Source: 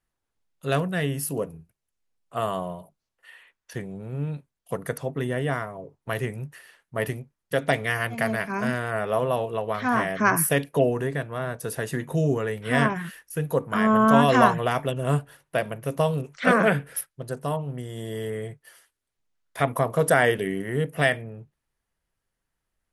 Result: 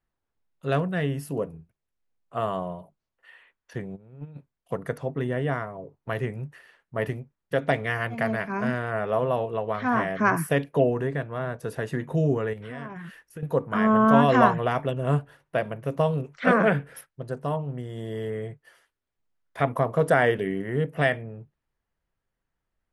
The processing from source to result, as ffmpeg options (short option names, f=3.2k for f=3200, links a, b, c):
-filter_complex "[0:a]asplit=3[a][b][c];[a]afade=t=out:st=3.95:d=0.02[d];[b]agate=range=-15dB:threshold=-26dB:ratio=16:release=100:detection=peak,afade=t=in:st=3.95:d=0.02,afade=t=out:st=4.35:d=0.02[e];[c]afade=t=in:st=4.35:d=0.02[f];[d][e][f]amix=inputs=3:normalize=0,asettb=1/sr,asplit=3[g][h][i];[g]atrim=end=12.534[j];[h]atrim=start=12.53:end=13.43,asetpts=PTS-STARTPTS,afade=t=in:d=0.004:c=qsin,afade=t=out:st=0.896:d=0.004:c=qsin,acompressor=threshold=-35dB:ratio=4:attack=3.2:release=140:knee=1:detection=peak[k];[i]atrim=start=13.426[l];[j][k]acrossfade=d=0.004:c1=hsin:c2=qsin[m];[m][l]acrossfade=d=0.004:c1=qsin:c2=hsin,aemphasis=mode=reproduction:type=75kf"